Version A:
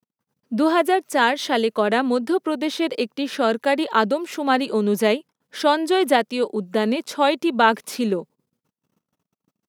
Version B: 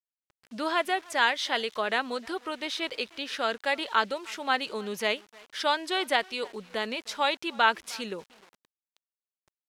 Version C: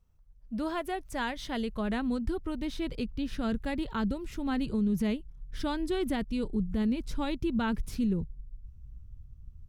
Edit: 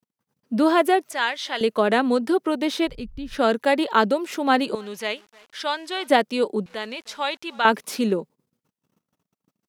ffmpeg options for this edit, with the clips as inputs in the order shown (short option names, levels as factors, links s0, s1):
-filter_complex "[1:a]asplit=3[s0][s1][s2];[0:a]asplit=5[s3][s4][s5][s6][s7];[s3]atrim=end=1.112[s8];[s0]atrim=start=1.108:end=1.612[s9];[s4]atrim=start=1.608:end=2.94[s10];[2:a]atrim=start=2.84:end=3.4[s11];[s5]atrim=start=3.3:end=4.752[s12];[s1]atrim=start=4.748:end=6.102[s13];[s6]atrim=start=6.098:end=6.662[s14];[s2]atrim=start=6.658:end=7.652[s15];[s7]atrim=start=7.648[s16];[s8][s9]acrossfade=d=0.004:c1=hsin:c2=hsin[s17];[s17][s10]acrossfade=d=0.004:c1=hsin:c2=hsin[s18];[s18][s11]acrossfade=d=0.1:c1=tri:c2=tri[s19];[s19][s12]acrossfade=d=0.1:c1=tri:c2=tri[s20];[s20][s13]acrossfade=d=0.004:c1=hsin:c2=hsin[s21];[s21][s14]acrossfade=d=0.004:c1=hsin:c2=hsin[s22];[s22][s15]acrossfade=d=0.004:c1=hsin:c2=hsin[s23];[s23][s16]acrossfade=d=0.004:c1=hsin:c2=hsin"